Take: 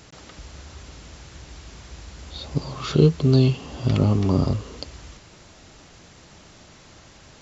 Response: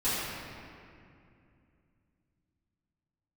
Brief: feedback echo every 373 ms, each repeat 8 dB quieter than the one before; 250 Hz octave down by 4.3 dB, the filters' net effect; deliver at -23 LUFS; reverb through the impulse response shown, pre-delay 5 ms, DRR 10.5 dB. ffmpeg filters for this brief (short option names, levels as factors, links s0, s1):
-filter_complex "[0:a]equalizer=f=250:t=o:g=-6.5,aecho=1:1:373|746|1119|1492|1865:0.398|0.159|0.0637|0.0255|0.0102,asplit=2[s0][s1];[1:a]atrim=start_sample=2205,adelay=5[s2];[s1][s2]afir=irnorm=-1:irlink=0,volume=0.0841[s3];[s0][s3]amix=inputs=2:normalize=0"